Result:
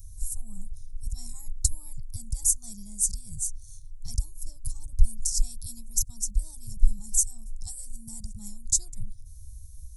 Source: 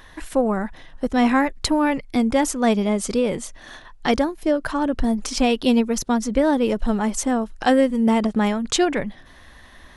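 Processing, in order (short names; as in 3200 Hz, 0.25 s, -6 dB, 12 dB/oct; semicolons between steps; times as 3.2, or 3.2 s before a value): inverse Chebyshev band-stop 250–3100 Hz, stop band 50 dB; gain +7.5 dB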